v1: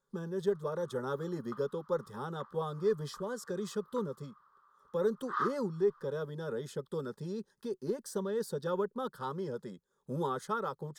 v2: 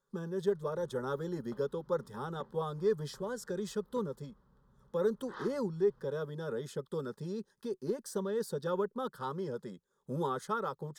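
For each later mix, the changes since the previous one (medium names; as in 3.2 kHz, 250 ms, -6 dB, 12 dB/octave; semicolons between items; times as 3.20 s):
background: remove resonant high-pass 1.2 kHz, resonance Q 8.3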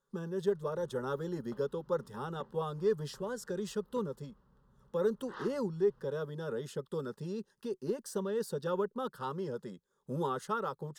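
master: remove Butterworth band-stop 2.8 kHz, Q 8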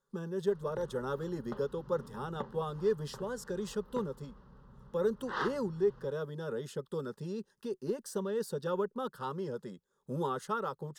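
background +10.5 dB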